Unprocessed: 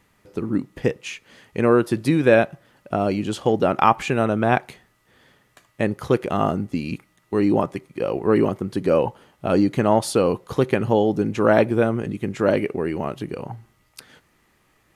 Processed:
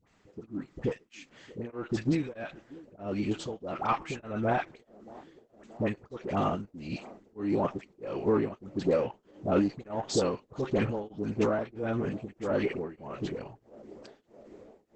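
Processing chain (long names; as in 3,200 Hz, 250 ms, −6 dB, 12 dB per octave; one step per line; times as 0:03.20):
one-sided soft clipper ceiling −2.5 dBFS
0:03.81–0:04.41: noise gate with hold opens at −28 dBFS
brickwall limiter −11.5 dBFS, peak gain reduction 8.5 dB
all-pass dispersion highs, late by 72 ms, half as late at 990 Hz
shaped tremolo triangle 1.6 Hz, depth 100%
on a send: delay with a band-pass on its return 629 ms, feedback 77%, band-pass 430 Hz, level −20 dB
on the sum: level −3 dB
Opus 10 kbit/s 48,000 Hz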